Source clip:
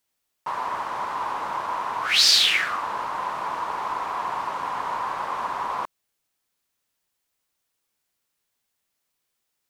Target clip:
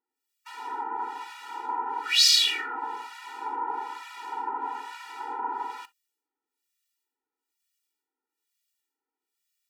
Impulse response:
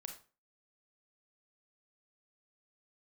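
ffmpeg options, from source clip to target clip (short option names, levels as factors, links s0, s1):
-filter_complex "[0:a]acrossover=split=1600[s0][s1];[s0]aeval=exprs='val(0)*(1-1/2+1/2*cos(2*PI*1.1*n/s))':c=same[s2];[s1]aeval=exprs='val(0)*(1-1/2-1/2*cos(2*PI*1.1*n/s))':c=same[s3];[s2][s3]amix=inputs=2:normalize=0,asplit=2[s4][s5];[1:a]atrim=start_sample=2205,atrim=end_sample=3087[s6];[s5][s6]afir=irnorm=-1:irlink=0,volume=0.501[s7];[s4][s7]amix=inputs=2:normalize=0,afftfilt=real='re*eq(mod(floor(b*sr/1024/250),2),1)':imag='im*eq(mod(floor(b*sr/1024/250),2),1)':win_size=1024:overlap=0.75"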